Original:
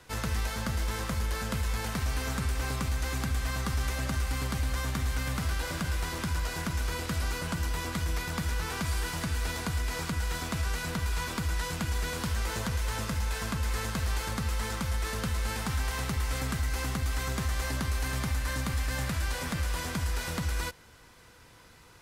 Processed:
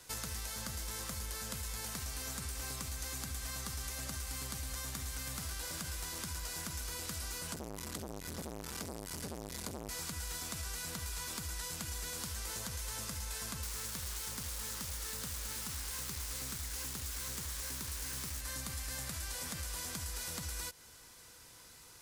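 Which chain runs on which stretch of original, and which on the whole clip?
0:07.54–0:09.89: low-shelf EQ 240 Hz +8 dB + saturating transformer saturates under 660 Hz
0:13.63–0:18.41: parametric band 700 Hz −12.5 dB 0.26 octaves + bit-depth reduction 6 bits, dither none + highs frequency-modulated by the lows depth 0.33 ms
whole clip: bass and treble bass −2 dB, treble +13 dB; downward compressor, threshold −32 dBFS; level −5.5 dB

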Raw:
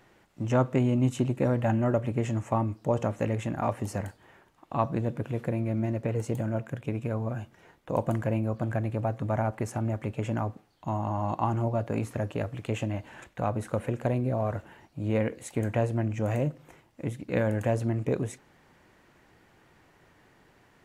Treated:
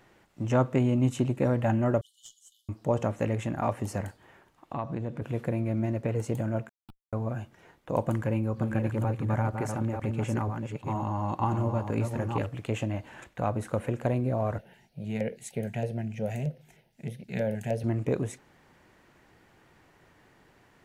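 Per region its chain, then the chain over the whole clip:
0:02.01–0:02.69: linear-phase brick-wall high-pass 2,900 Hz + tube saturation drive 37 dB, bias 0.25
0:04.73–0:05.22: high-shelf EQ 8,700 Hz −11 dB + downward compressor 3 to 1, threshold −29 dBFS
0:06.69–0:07.13: formant resonators in series u + comparator with hysteresis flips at −31 dBFS + phaser with its sweep stopped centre 1,900 Hz, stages 6
0:08.09–0:12.49: delay that plays each chunk backwards 477 ms, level −5 dB + notch filter 670 Hz, Q 5.1
0:14.58–0:17.84: auto-filter notch square 3.2 Hz 520–7,400 Hz + phaser with its sweep stopped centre 300 Hz, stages 6
whole clip: no processing

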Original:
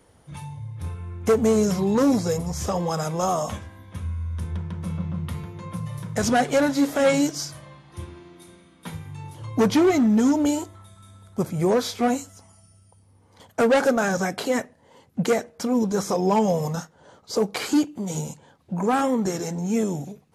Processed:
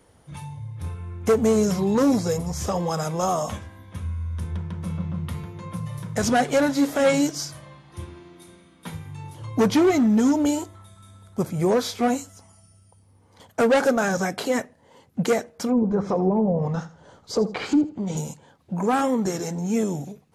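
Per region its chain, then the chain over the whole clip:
0:15.69–0:18.17: treble cut that deepens with the level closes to 530 Hz, closed at −16.5 dBFS + low-shelf EQ 85 Hz +10 dB + repeating echo 81 ms, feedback 26%, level −15.5 dB
whole clip: no processing

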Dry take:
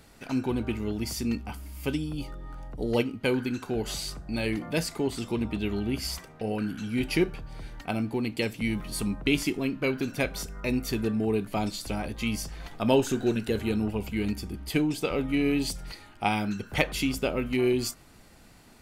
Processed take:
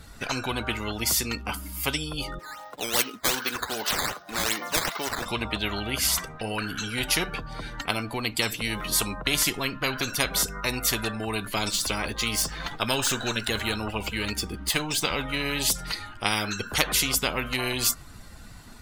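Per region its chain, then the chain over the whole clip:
0:02.39–0:05.26: variable-slope delta modulation 32 kbit/s + high-pass filter 490 Hz + sample-and-hold swept by an LFO 9×, swing 160% 2.6 Hz
0:11.71–0:15.58: running median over 3 samples + notch filter 720 Hz, Q 16
whole clip: spectral dynamics exaggerated over time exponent 1.5; high-shelf EQ 12,000 Hz −7.5 dB; every bin compressed towards the loudest bin 4 to 1; level +6 dB

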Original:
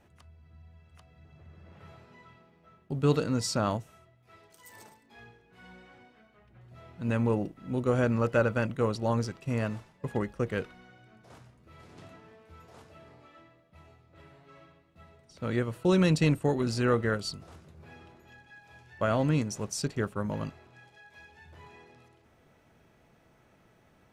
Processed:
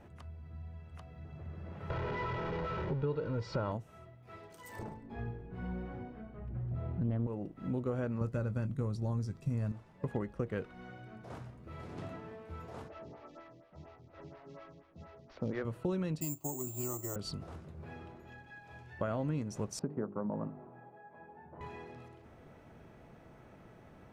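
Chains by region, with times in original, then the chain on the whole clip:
0:01.90–0:03.72: converter with a step at zero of −33.5 dBFS + Gaussian smoothing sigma 2.2 samples + comb filter 2.1 ms, depth 56%
0:04.79–0:07.27: spectral tilt −3.5 dB per octave + highs frequency-modulated by the lows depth 0.49 ms
0:08.21–0:09.72: bass and treble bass +13 dB, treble +12 dB + notch filter 2,900 Hz, Q 9.6 + double-tracking delay 20 ms −13 dB
0:12.88–0:15.65: variable-slope delta modulation 32 kbit/s + phaser with staggered stages 4.2 Hz
0:16.21–0:17.16: high-pass filter 190 Hz 6 dB per octave + phaser with its sweep stopped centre 320 Hz, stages 8 + bad sample-rate conversion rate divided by 6×, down filtered, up zero stuff
0:19.79–0:21.61: Chebyshev band-pass filter 180–970 Hz + mains-hum notches 50/100/150/200/250/300/350/400/450 Hz
whole clip: speech leveller within 3 dB 0.5 s; high-shelf EQ 2,100 Hz −11 dB; downward compressor 4 to 1, threshold −39 dBFS; level +4.5 dB

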